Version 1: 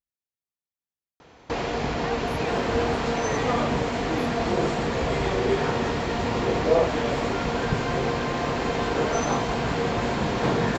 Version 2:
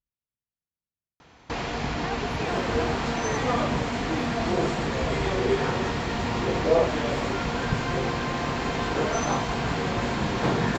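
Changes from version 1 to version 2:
speech: add bass and treble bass +9 dB, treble −12 dB
first sound: add parametric band 470 Hz −6.5 dB 1.2 octaves

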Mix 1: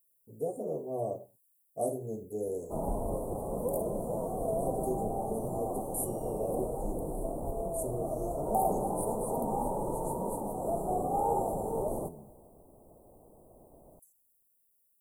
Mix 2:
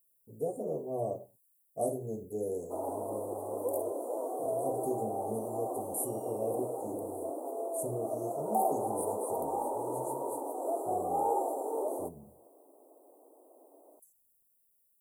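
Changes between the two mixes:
background: add Butterworth high-pass 270 Hz 72 dB per octave
reverb: off

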